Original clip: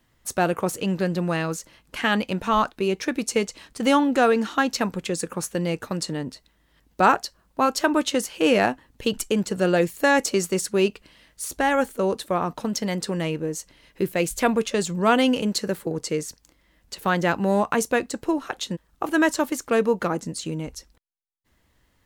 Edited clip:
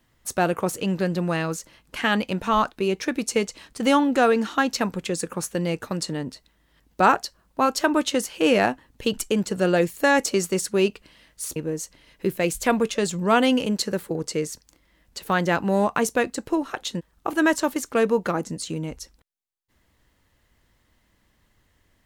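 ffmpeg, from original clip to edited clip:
-filter_complex "[0:a]asplit=2[a][b];[a]atrim=end=11.562[c];[b]atrim=start=13.318[d];[c][d]acrossfade=d=0.004:c1=hsin:c2=hsin"

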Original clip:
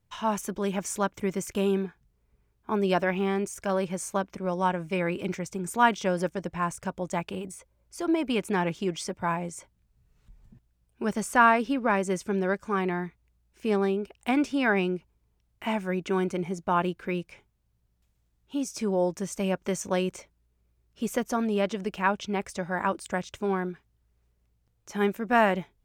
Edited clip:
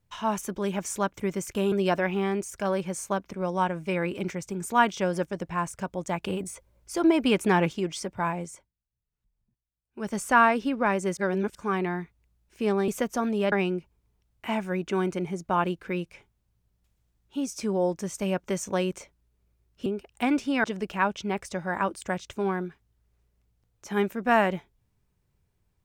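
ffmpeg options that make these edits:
-filter_complex "[0:a]asplit=12[a][b][c][d][e][f][g][h][i][j][k][l];[a]atrim=end=1.722[m];[b]atrim=start=2.758:end=7.272[n];[c]atrim=start=7.268:end=8.772,asetpts=PTS-STARTPTS,volume=4.5dB[o];[d]atrim=start=8.768:end=9.77,asetpts=PTS-STARTPTS,afade=t=out:st=0.712:d=0.29:silence=0.0749894[p];[e]atrim=start=9.77:end=10.92,asetpts=PTS-STARTPTS,volume=-22.5dB[q];[f]atrim=start=10.92:end=12.212,asetpts=PTS-STARTPTS,afade=t=in:d=0.29:silence=0.0749894[r];[g]atrim=start=12.208:end=12.592,asetpts=PTS-STARTPTS,areverse[s];[h]atrim=start=12.588:end=13.922[t];[i]atrim=start=21.038:end=21.682[u];[j]atrim=start=14.698:end=21.042[v];[k]atrim=start=13.918:end=14.702[w];[l]atrim=start=21.678[x];[m][n]acrossfade=d=0.004:c1=hsin:c2=hsin[y];[y][o]acrossfade=d=0.004:c1=hsin:c2=hsin[z];[p][q][r]concat=n=3:v=0:a=1[aa];[z][aa]acrossfade=d=0.004:c1=hsin:c2=hsin[ab];[ab][s]acrossfade=d=0.004:c1=hsin:c2=hsin[ac];[ac][t]acrossfade=d=0.004:c1=hsin:c2=hsin[ad];[ad][u]acrossfade=d=0.004:c1=hsin:c2=hsin[ae];[ae][v]acrossfade=d=0.004:c1=hsin:c2=hsin[af];[af][w]acrossfade=d=0.004:c1=hsin:c2=hsin[ag];[ag][x]acrossfade=d=0.004:c1=hsin:c2=hsin"

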